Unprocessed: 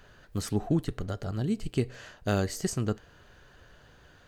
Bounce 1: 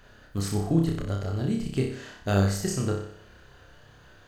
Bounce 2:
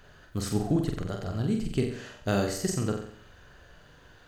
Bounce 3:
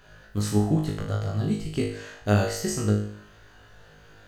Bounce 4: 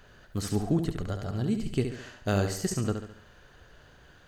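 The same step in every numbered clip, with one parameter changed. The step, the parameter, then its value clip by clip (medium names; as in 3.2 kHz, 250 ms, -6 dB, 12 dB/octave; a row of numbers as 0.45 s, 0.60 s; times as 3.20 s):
flutter echo, walls apart: 5.2 m, 7.7 m, 3.3 m, 12 m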